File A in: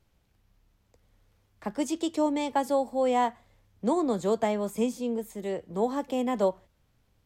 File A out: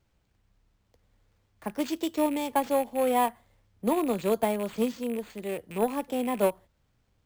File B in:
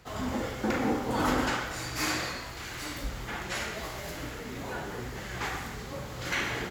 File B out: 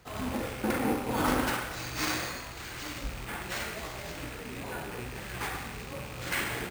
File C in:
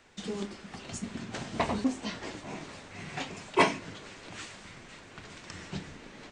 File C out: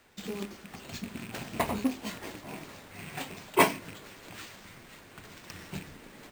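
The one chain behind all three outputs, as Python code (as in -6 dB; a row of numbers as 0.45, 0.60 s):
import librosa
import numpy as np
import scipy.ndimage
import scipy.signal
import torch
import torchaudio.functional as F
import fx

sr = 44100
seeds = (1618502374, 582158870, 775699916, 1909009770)

y = fx.rattle_buzz(x, sr, strikes_db=-42.0, level_db=-32.0)
y = fx.cheby_harmonics(y, sr, harmonics=(7,), levels_db=(-27,), full_scale_db=-9.0)
y = np.repeat(y[::4], 4)[:len(y)]
y = F.gain(torch.from_numpy(y), 1.5).numpy()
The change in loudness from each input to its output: 0.0, -1.0, +1.0 LU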